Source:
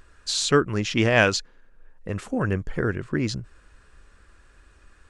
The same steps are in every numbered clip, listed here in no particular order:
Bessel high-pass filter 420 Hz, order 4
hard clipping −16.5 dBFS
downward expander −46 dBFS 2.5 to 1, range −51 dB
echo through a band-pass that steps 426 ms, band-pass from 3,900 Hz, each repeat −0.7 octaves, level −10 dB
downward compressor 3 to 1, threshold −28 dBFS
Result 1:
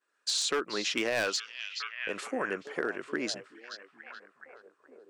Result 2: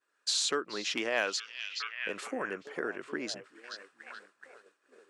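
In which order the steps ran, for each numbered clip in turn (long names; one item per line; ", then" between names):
Bessel high-pass filter, then downward expander, then echo through a band-pass that steps, then hard clipping, then downward compressor
echo through a band-pass that steps, then downward compressor, then hard clipping, then Bessel high-pass filter, then downward expander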